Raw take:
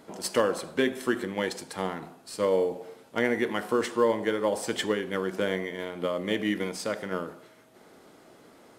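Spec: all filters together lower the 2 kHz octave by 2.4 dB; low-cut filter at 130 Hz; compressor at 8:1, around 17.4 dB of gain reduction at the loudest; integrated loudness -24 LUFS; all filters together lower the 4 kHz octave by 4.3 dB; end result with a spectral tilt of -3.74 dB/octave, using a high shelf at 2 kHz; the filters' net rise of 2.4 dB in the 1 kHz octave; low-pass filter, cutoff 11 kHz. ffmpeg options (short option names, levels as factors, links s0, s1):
-af "highpass=130,lowpass=11000,equalizer=f=1000:t=o:g=3.5,highshelf=f=2000:g=3.5,equalizer=f=2000:t=o:g=-4.5,equalizer=f=4000:t=o:g=-8,acompressor=threshold=0.0141:ratio=8,volume=7.94"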